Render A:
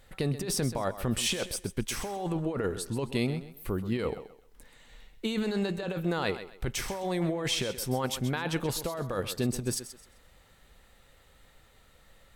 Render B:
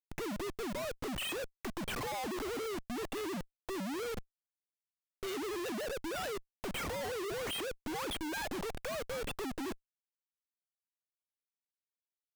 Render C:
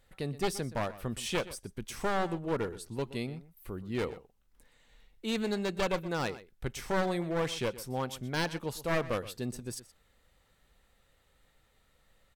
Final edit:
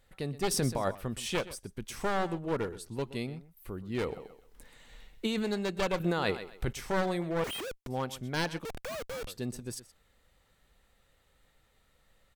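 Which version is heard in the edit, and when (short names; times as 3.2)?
C
0.51–0.95 from A
4.14–5.37 from A, crossfade 0.24 s
6–6.73 from A
7.44–7.87 from B
8.65–9.27 from B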